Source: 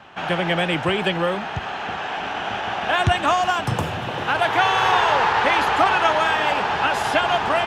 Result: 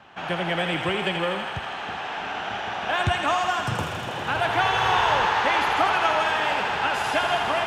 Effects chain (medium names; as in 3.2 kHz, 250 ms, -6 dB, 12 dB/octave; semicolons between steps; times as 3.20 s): 4.26–5.26 s: bass shelf 130 Hz +11.5 dB; thinning echo 81 ms, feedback 84%, high-pass 620 Hz, level -6 dB; trim -5 dB